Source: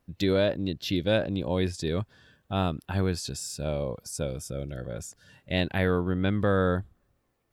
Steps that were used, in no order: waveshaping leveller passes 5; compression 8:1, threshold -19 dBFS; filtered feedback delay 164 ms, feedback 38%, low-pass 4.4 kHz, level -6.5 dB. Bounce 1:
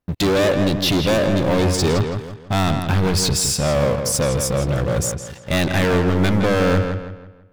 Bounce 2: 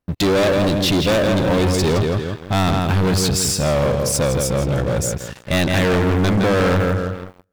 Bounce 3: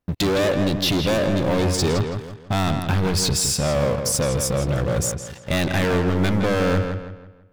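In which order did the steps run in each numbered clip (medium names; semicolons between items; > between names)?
compression > waveshaping leveller > filtered feedback delay; compression > filtered feedback delay > waveshaping leveller; waveshaping leveller > compression > filtered feedback delay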